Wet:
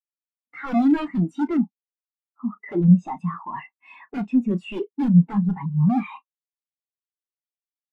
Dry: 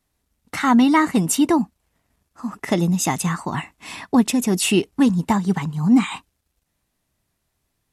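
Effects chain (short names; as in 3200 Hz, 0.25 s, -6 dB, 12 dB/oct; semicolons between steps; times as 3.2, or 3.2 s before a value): 1.49–3.5 high shelf 2500 Hz -5 dB; overdrive pedal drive 30 dB, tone 2600 Hz, clips at -5 dBFS; wrapped overs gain 8 dB; doubler 34 ms -9.5 dB; spectral expander 2.5:1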